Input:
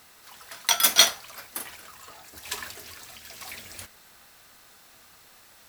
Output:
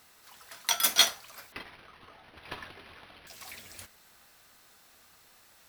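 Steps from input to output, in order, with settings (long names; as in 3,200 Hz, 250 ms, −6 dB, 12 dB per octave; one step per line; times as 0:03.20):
regular buffer underruns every 0.33 s, samples 512, repeat, from 0:00.66
0:01.52–0:03.27: linearly interpolated sample-rate reduction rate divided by 6×
level −5.5 dB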